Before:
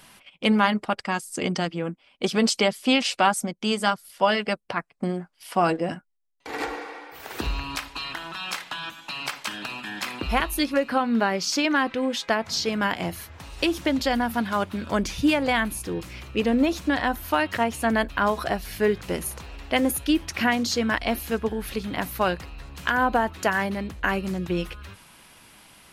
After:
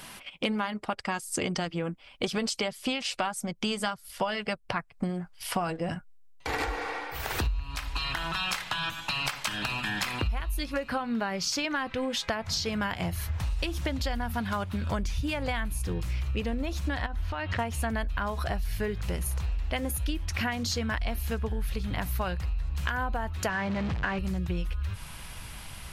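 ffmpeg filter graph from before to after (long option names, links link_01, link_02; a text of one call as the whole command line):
ffmpeg -i in.wav -filter_complex "[0:a]asettb=1/sr,asplit=3[link_01][link_02][link_03];[link_01]atrim=end=17.064[link_04];[link_02]atrim=start=17.06:end=17.59,asetpts=PTS-STARTPTS,afade=type=in:duration=0.004:curve=qsin,afade=type=out:start_time=0.526:duration=0.004:curve=qsin,lowpass=4400,acompressor=threshold=-32dB:ratio=3:attack=3.2:release=140:knee=1:detection=peak[link_05];[link_03]atrim=start=17.586[link_06];[link_04][link_05]acrossfade=duration=0.004:curve1=hsin:curve2=qsin[link_07];[link_07][link_06]acrossfade=duration=0.004:curve1=qsin:curve2=hsin,asettb=1/sr,asplit=3[link_08][link_09][link_10];[link_08]atrim=end=23.494[link_11];[link_09]atrim=start=23.49:end=24.19,asetpts=PTS-STARTPTS,afade=type=in:duration=0.004:curve=qsin,afade=type=out:start_time=0.696:duration=0.004:curve=qsin,aeval=exprs='val(0)+0.5*0.0531*sgn(val(0))':channel_layout=same,highpass=130,lowpass=3300[link_12];[link_10]atrim=start=24.186[link_13];[link_11][link_12]acrossfade=duration=0.004:curve1=hsin:curve2=qsin[link_14];[link_14][link_13]acrossfade=duration=0.004:curve1=qsin:curve2=hsin,asubboost=boost=9:cutoff=91,acompressor=threshold=-33dB:ratio=10,volume=6dB" out.wav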